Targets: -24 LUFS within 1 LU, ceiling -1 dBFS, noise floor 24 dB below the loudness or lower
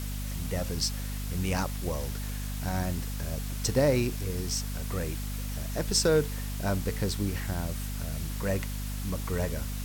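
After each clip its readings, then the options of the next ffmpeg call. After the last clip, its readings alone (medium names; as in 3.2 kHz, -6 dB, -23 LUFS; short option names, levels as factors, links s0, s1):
hum 50 Hz; highest harmonic 250 Hz; hum level -32 dBFS; noise floor -34 dBFS; noise floor target -55 dBFS; loudness -31.0 LUFS; peak level -13.5 dBFS; loudness target -24.0 LUFS
-> -af "bandreject=f=50:t=h:w=4,bandreject=f=100:t=h:w=4,bandreject=f=150:t=h:w=4,bandreject=f=200:t=h:w=4,bandreject=f=250:t=h:w=4"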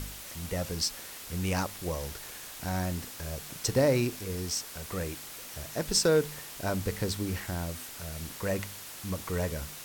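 hum not found; noise floor -44 dBFS; noise floor target -56 dBFS
-> -af "afftdn=nr=12:nf=-44"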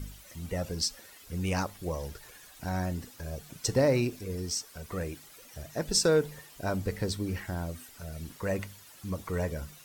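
noise floor -53 dBFS; noise floor target -56 dBFS
-> -af "afftdn=nr=6:nf=-53"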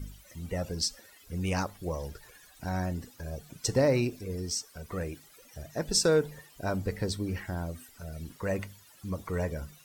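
noise floor -57 dBFS; loudness -32.0 LUFS; peak level -14.5 dBFS; loudness target -24.0 LUFS
-> -af "volume=2.51"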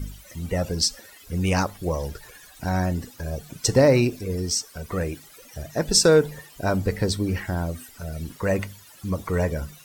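loudness -24.0 LUFS; peak level -6.5 dBFS; noise floor -49 dBFS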